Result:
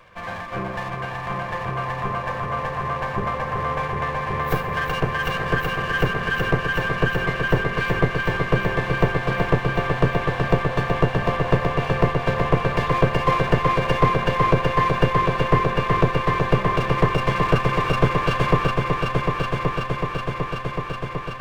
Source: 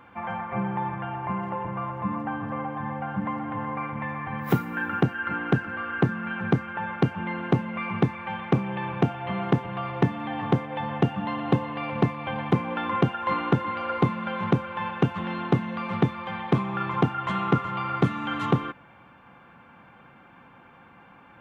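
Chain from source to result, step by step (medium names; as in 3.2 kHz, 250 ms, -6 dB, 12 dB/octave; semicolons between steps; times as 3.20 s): comb filter that takes the minimum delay 1.8 ms; multi-head delay 375 ms, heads all three, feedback 74%, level -10 dB; trim +2.5 dB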